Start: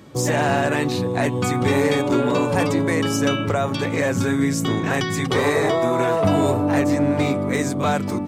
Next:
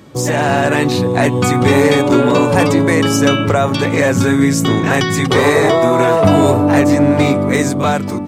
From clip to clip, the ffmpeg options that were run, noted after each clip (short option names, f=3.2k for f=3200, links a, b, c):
-af "dynaudnorm=f=110:g=11:m=4dB,volume=4dB"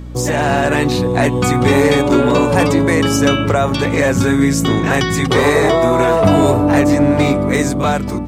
-af "aeval=exprs='val(0)+0.0447*(sin(2*PI*60*n/s)+sin(2*PI*2*60*n/s)/2+sin(2*PI*3*60*n/s)/3+sin(2*PI*4*60*n/s)/4+sin(2*PI*5*60*n/s)/5)':c=same,volume=-1dB"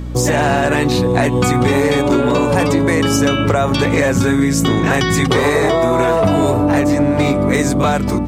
-af "acompressor=threshold=-15dB:ratio=6,volume=4.5dB"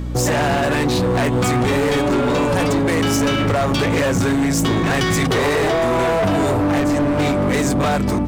-af "asoftclip=type=hard:threshold=-14.5dB"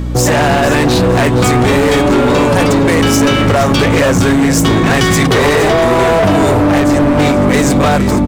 -filter_complex "[0:a]asplit=4[a][b][c][d];[b]adelay=468,afreqshift=-47,volume=-12dB[e];[c]adelay=936,afreqshift=-94,volume=-22.2dB[f];[d]adelay=1404,afreqshift=-141,volume=-32.3dB[g];[a][e][f][g]amix=inputs=4:normalize=0,volume=7dB"